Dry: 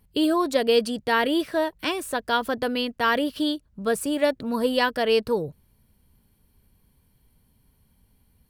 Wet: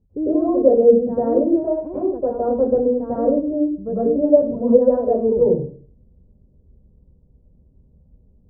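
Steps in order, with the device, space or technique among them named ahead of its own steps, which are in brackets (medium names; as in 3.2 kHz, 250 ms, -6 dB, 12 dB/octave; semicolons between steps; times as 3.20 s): next room (low-pass 560 Hz 24 dB/octave; reverberation RT60 0.45 s, pre-delay 94 ms, DRR -10 dB); trim -1.5 dB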